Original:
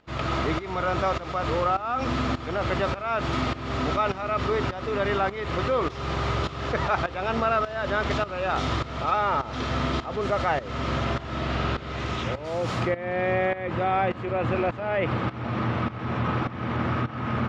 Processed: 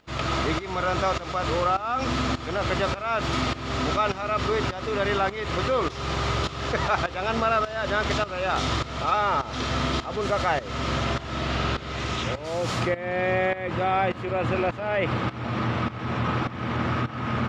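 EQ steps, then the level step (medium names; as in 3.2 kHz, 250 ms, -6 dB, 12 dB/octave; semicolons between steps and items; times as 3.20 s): treble shelf 4 kHz +10 dB; 0.0 dB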